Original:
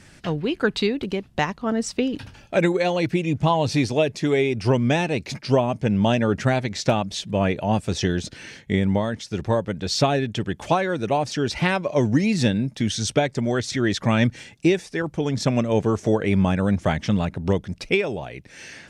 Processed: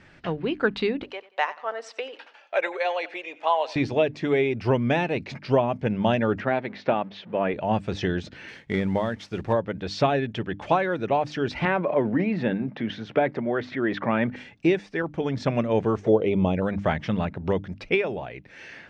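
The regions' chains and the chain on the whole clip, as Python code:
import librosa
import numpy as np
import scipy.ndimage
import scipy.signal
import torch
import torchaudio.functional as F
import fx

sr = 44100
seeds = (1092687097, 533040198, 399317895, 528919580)

y = fx.chain(x, sr, fx.highpass(hz=540.0, slope=24),
    fx.echo_feedback(ms=92, feedback_pct=34, wet_db=-18.5), at=(1.03, 3.76))
y = fx.chain(y, sr, fx.law_mismatch(coded='mu'),
    fx.highpass(hz=210.0, slope=12),
    fx.air_absorb(metres=250.0), at=(6.4, 7.54))
y = fx.chain(y, sr, fx.cvsd(bps=64000),
    fx.high_shelf(hz=8300.0, db=10.0), at=(8.48, 9.53))
y = fx.chain(y, sr, fx.block_float(bits=7),
    fx.transient(attack_db=0, sustain_db=9),
    fx.bandpass_edges(low_hz=180.0, high_hz=2100.0), at=(11.65, 14.36))
y = fx.chain(y, sr, fx.peak_eq(hz=450.0, db=5.5, octaves=1.0),
    fx.env_flanger(rest_ms=2.6, full_db=-14.5), at=(16.01, 16.62))
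y = scipy.signal.sosfilt(scipy.signal.butter(2, 2700.0, 'lowpass', fs=sr, output='sos'), y)
y = fx.low_shelf(y, sr, hz=290.0, db=-5.0)
y = fx.hum_notches(y, sr, base_hz=50, count=6)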